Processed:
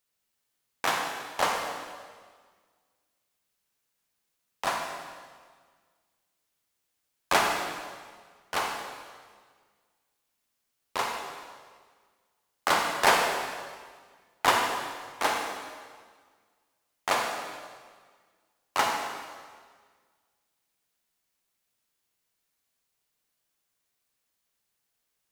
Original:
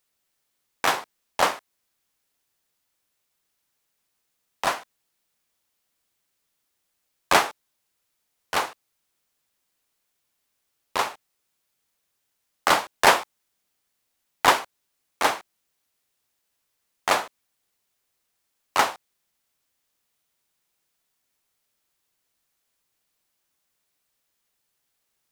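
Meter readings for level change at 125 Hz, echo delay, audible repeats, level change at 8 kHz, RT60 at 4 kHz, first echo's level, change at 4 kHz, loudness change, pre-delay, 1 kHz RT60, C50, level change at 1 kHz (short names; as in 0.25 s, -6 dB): -2.5 dB, none, none, -3.0 dB, 1.6 s, none, -3.0 dB, -5.0 dB, 39 ms, 1.6 s, 2.0 dB, -3.5 dB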